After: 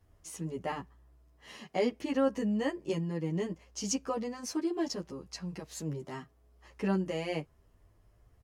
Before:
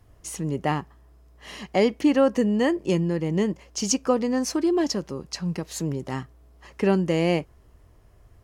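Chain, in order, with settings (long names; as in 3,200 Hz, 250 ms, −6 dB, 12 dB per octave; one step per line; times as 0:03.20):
barber-pole flanger 10.3 ms +0.67 Hz
level −6.5 dB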